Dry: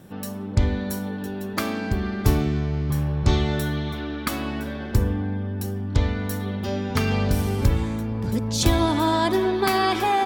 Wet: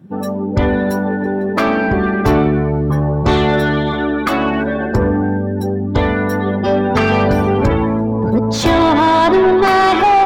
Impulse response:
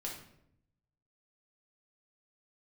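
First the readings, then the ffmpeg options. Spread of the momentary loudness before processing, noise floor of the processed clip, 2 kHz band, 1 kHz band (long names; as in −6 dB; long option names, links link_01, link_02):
8 LU, −20 dBFS, +11.5 dB, +12.0 dB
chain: -filter_complex "[0:a]afftdn=noise_reduction=23:noise_floor=-36,asplit=2[link_01][link_02];[link_02]highpass=frequency=720:poles=1,volume=25dB,asoftclip=type=tanh:threshold=-5dB[link_03];[link_01][link_03]amix=inputs=2:normalize=0,lowpass=frequency=1100:poles=1,volume=-6dB,volume=3.5dB"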